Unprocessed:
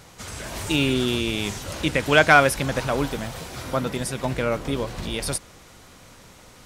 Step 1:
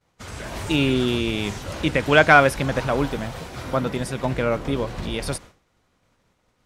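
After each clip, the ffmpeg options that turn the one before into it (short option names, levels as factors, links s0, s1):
-af "agate=range=0.0224:threshold=0.0178:ratio=3:detection=peak,highshelf=f=4500:g=-9.5,volume=1.26"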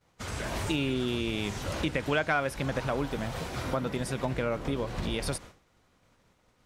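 -af "acompressor=threshold=0.0355:ratio=3"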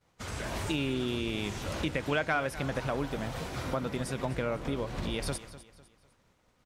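-af "aecho=1:1:251|502|753:0.168|0.0604|0.0218,volume=0.794"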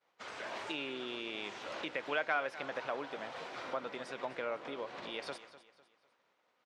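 -af "highpass=480,lowpass=4000,volume=0.708"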